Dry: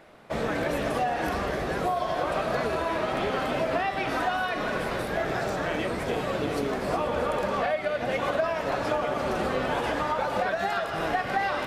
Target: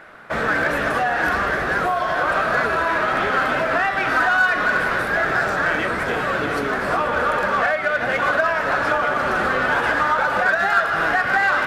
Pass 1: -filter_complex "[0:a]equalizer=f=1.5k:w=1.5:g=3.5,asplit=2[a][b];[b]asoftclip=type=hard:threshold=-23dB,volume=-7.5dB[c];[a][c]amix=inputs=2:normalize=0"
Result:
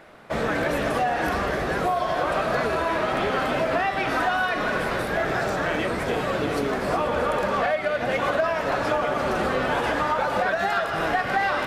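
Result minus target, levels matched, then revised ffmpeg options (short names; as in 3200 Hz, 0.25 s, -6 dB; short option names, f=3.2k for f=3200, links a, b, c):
2000 Hz band -4.0 dB
-filter_complex "[0:a]equalizer=f=1.5k:w=1.5:g=14.5,asplit=2[a][b];[b]asoftclip=type=hard:threshold=-23dB,volume=-7.5dB[c];[a][c]amix=inputs=2:normalize=0"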